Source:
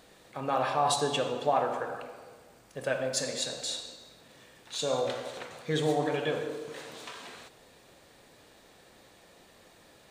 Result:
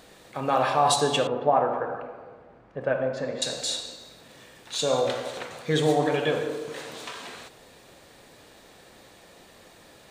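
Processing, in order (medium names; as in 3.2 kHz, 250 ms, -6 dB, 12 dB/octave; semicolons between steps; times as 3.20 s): 1.27–3.42 s: low-pass 1.5 kHz 12 dB/octave; trim +5.5 dB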